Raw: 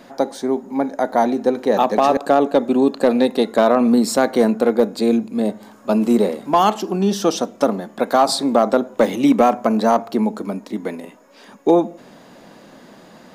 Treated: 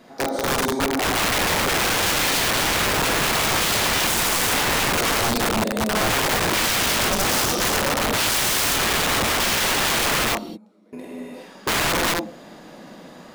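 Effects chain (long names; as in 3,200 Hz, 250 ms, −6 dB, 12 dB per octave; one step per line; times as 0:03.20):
0:10.15–0:10.93: gate with flip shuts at −27 dBFS, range −32 dB
reverb whose tail is shaped and stops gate 430 ms flat, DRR −7.5 dB
wrap-around overflow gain 9.5 dB
level −6.5 dB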